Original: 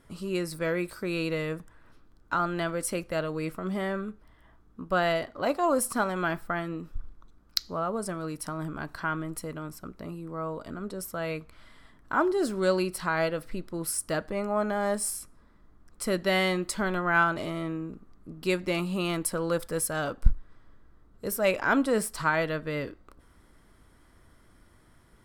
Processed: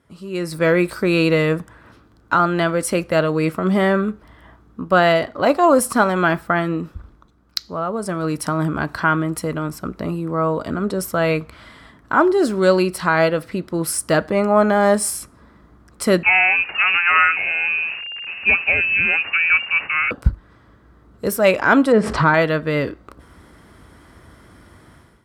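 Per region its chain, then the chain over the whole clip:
16.23–20.11 delta modulation 64 kbps, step -38.5 dBFS + air absorption 350 m + inverted band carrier 2800 Hz
21.92–22.34 sample leveller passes 1 + tape spacing loss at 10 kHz 30 dB + backwards sustainer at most 43 dB/s
whole clip: HPF 54 Hz 24 dB/oct; high shelf 6100 Hz -6.5 dB; AGC gain up to 15.5 dB; gain -1 dB

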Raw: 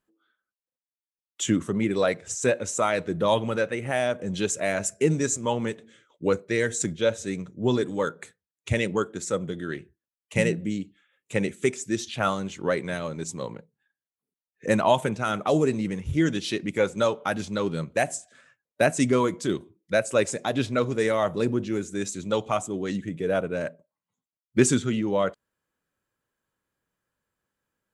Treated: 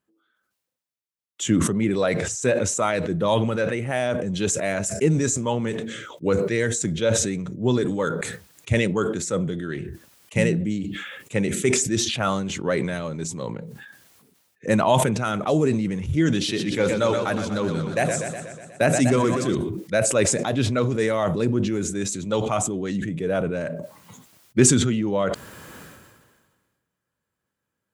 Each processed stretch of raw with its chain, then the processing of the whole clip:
16.36–19.55 de-hum 75.08 Hz, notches 7 + warbling echo 0.122 s, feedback 70%, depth 98 cents, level -9.5 dB
whole clip: HPF 93 Hz; low shelf 130 Hz +9.5 dB; sustainer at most 36 dB/s

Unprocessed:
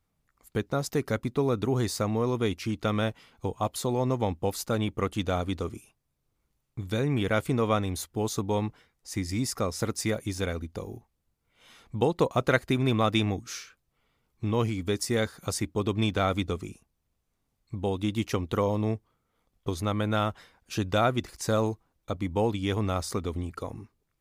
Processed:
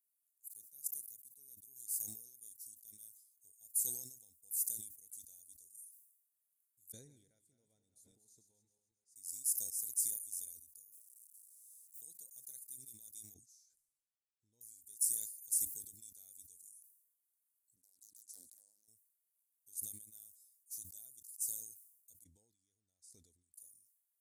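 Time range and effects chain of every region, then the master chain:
0.68–3.07 bell 13000 Hz +4.5 dB 0.42 oct + transient shaper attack -3 dB, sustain -7 dB
6.92–9.16 regenerating reverse delay 0.133 s, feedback 60%, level -8 dB + LPF 2000 Hz
10.92–12.01 delta modulation 64 kbps, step -48 dBFS + modulation noise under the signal 24 dB
13.34–14.61 LPF 3300 Hz + bell 2600 Hz -6 dB 1.9 oct
17.76–18.88 speaker cabinet 230–9200 Hz, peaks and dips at 430 Hz -6 dB, 650 Hz +8 dB, 1800 Hz -7 dB, 3000 Hz -5 dB, 5900 Hz -5 dB + compressor 4:1, threshold -35 dBFS + Doppler distortion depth 0.7 ms
22.24–23.54 LPF 2900 Hz + compressor 5:1, threshold -33 dBFS
whole clip: inverse Chebyshev high-pass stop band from 3000 Hz, stop band 60 dB; sustainer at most 67 dB/s; gain +6 dB

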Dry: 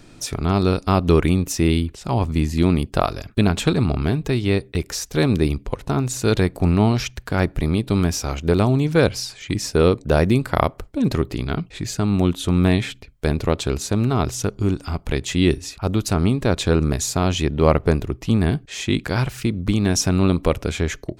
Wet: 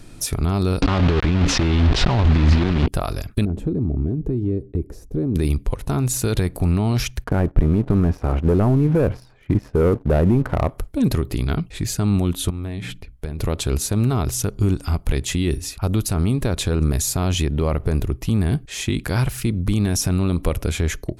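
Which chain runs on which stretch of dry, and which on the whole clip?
0.82–2.88 block floating point 3-bit + LPF 4100 Hz 24 dB/oct + fast leveller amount 100%
3.45–5.36 EQ curve 180 Hz 0 dB, 320 Hz +6 dB, 1200 Hz -17 dB, 3400 Hz -27 dB + compressor 3:1, threshold -22 dBFS
7.24–10.7 LPF 1100 Hz + low shelf 150 Hz -5 dB + sample leveller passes 2
12.5–13.39 high shelf 5000 Hz -8.5 dB + notches 60/120/180/240/300 Hz + compressor 10:1, threshold -26 dBFS
whole clip: bell 11000 Hz +13 dB 0.52 oct; limiter -12 dBFS; low shelf 97 Hz +10 dB

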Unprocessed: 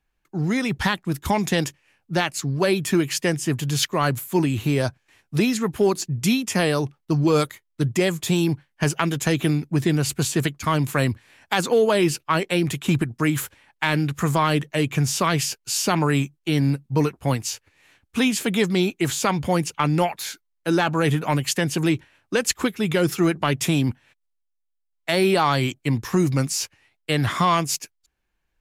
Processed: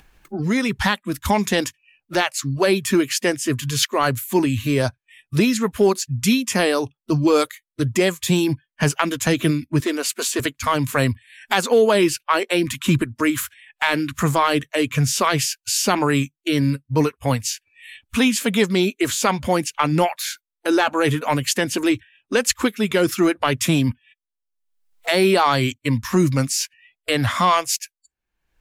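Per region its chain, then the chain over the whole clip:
9.8–10.4 HPF 320 Hz + hard clip -18 dBFS
whole clip: spectral noise reduction 27 dB; upward compressor, threshold -24 dBFS; gain +3 dB

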